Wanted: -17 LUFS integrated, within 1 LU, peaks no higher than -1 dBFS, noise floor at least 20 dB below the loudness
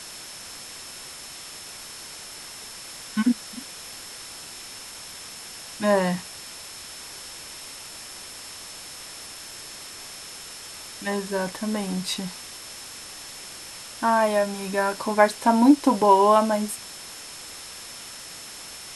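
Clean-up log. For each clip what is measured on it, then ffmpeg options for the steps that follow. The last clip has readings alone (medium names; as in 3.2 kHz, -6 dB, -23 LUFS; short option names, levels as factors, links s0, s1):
steady tone 5.3 kHz; tone level -44 dBFS; noise floor -40 dBFS; noise floor target -47 dBFS; loudness -27.0 LUFS; peak level -3.0 dBFS; loudness target -17.0 LUFS
-> -af "bandreject=f=5300:w=30"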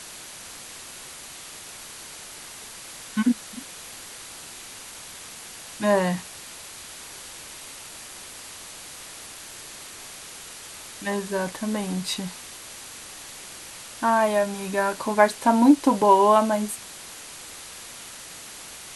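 steady tone not found; noise floor -41 dBFS; noise floor target -43 dBFS
-> -af "afftdn=nr=6:nf=-41"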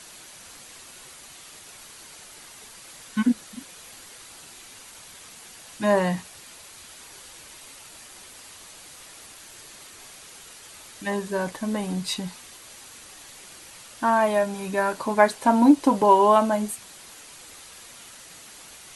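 noise floor -46 dBFS; loudness -22.5 LUFS; peak level -3.0 dBFS; loudness target -17.0 LUFS
-> -af "volume=1.88,alimiter=limit=0.891:level=0:latency=1"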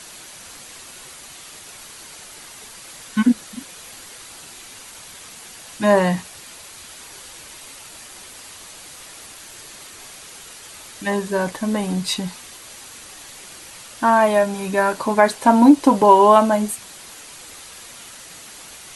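loudness -17.5 LUFS; peak level -1.0 dBFS; noise floor -41 dBFS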